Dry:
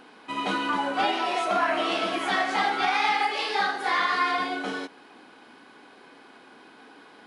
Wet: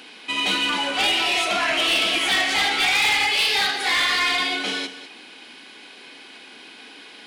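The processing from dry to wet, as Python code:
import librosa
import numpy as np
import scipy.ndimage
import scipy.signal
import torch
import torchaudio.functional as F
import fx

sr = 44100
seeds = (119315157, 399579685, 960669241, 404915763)

y = scipy.signal.sosfilt(scipy.signal.butter(2, 130.0, 'highpass', fs=sr, output='sos'), x)
y = fx.high_shelf_res(y, sr, hz=1800.0, db=10.5, q=1.5)
y = 10.0 ** (-18.0 / 20.0) * np.tanh(y / 10.0 ** (-18.0 / 20.0))
y = y + 10.0 ** (-13.5 / 20.0) * np.pad(y, (int(200 * sr / 1000.0), 0))[:len(y)]
y = y * 10.0 ** (2.5 / 20.0)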